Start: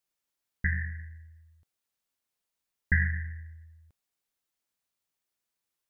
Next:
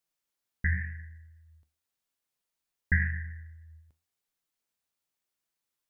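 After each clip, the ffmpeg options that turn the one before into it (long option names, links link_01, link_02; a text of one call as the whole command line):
ffmpeg -i in.wav -af "flanger=delay=5.9:depth=7.5:regen=76:speed=0.91:shape=sinusoidal,volume=3.5dB" out.wav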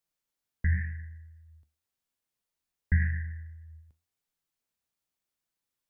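ffmpeg -i in.wav -filter_complex "[0:a]acrossover=split=230[link_01][link_02];[link_02]alimiter=level_in=1dB:limit=-24dB:level=0:latency=1:release=126,volume=-1dB[link_03];[link_01][link_03]amix=inputs=2:normalize=0,lowshelf=frequency=260:gain=5.5,volume=-2dB" out.wav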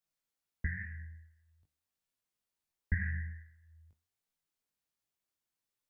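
ffmpeg -i in.wav -af "flanger=delay=18.5:depth=2.5:speed=1.4" out.wav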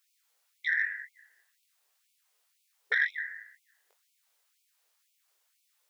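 ffmpeg -i in.wav -af "aeval=exprs='0.119*sin(PI/2*2.24*val(0)/0.119)':channel_layout=same,afftfilt=real='re*gte(b*sr/1024,340*pow(2200/340,0.5+0.5*sin(2*PI*2*pts/sr)))':imag='im*gte(b*sr/1024,340*pow(2200/340,0.5+0.5*sin(2*PI*2*pts/sr)))':win_size=1024:overlap=0.75,volume=5dB" out.wav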